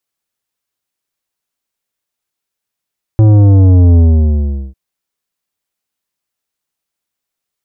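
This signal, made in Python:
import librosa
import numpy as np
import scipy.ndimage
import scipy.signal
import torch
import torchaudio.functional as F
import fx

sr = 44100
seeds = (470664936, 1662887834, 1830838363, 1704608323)

y = fx.sub_drop(sr, level_db=-4.5, start_hz=110.0, length_s=1.55, drive_db=11.0, fade_s=0.77, end_hz=65.0)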